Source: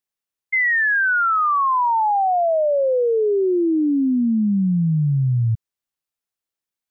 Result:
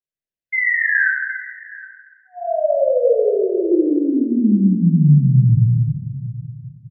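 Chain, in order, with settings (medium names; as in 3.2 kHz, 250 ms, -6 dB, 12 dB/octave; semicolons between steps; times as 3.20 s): spectral noise reduction 10 dB; peak limiter -22 dBFS, peak gain reduction 7 dB; brick-wall FIR band-stop 710–1500 Hz; multi-tap echo 68/769 ms -11.5/-18 dB; simulated room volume 2300 m³, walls mixed, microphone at 5 m; tape noise reduction on one side only decoder only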